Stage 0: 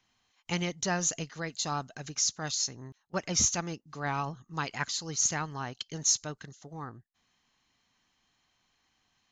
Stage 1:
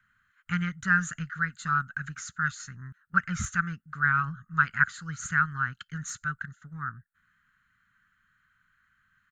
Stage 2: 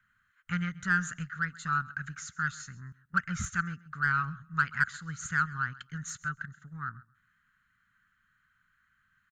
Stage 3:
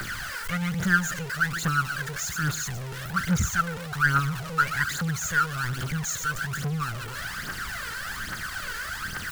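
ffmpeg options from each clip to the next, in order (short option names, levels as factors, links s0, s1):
-af "firequalizer=gain_entry='entry(180,0);entry(320,-22);entry(760,-28);entry(1400,15);entry(2300,-8);entry(5600,-25);entry(8000,-4)':delay=0.05:min_phase=1,volume=1.68"
-filter_complex "[0:a]asplit=2[s0][s1];[s1]asoftclip=type=tanh:threshold=0.106,volume=0.596[s2];[s0][s2]amix=inputs=2:normalize=0,aecho=1:1:133|266:0.0891|0.0143,volume=0.473"
-af "aeval=exprs='val(0)+0.5*0.0316*sgn(val(0))':c=same,aphaser=in_gain=1:out_gain=1:delay=2.3:decay=0.61:speed=1.2:type=triangular"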